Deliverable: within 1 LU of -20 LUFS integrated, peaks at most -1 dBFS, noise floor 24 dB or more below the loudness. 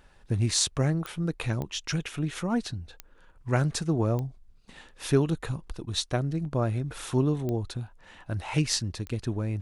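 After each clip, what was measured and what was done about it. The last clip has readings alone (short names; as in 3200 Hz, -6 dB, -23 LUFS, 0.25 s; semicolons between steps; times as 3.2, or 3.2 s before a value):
clicks 6; loudness -29.0 LUFS; peak -7.0 dBFS; loudness target -20.0 LUFS
-> de-click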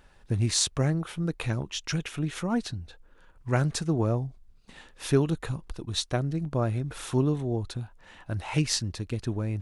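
clicks 0; loudness -29.0 LUFS; peak -7.0 dBFS; loudness target -20.0 LUFS
-> gain +9 dB; limiter -1 dBFS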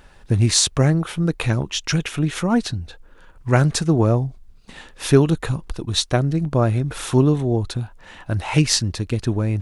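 loudness -20.0 LUFS; peak -1.0 dBFS; noise floor -47 dBFS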